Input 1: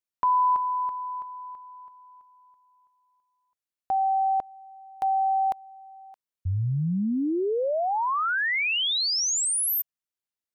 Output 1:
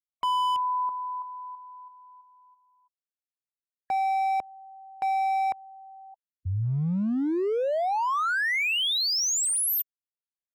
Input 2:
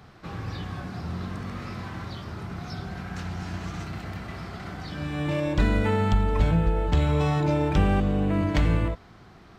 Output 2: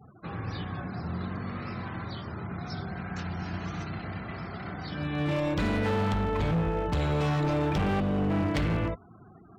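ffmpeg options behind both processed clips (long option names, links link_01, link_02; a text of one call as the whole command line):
ffmpeg -i in.wav -af "highpass=83,afftfilt=real='re*gte(hypot(re,im),0.00562)':imag='im*gte(hypot(re,im),0.00562)':win_size=1024:overlap=0.75,volume=23.5dB,asoftclip=hard,volume=-23.5dB" out.wav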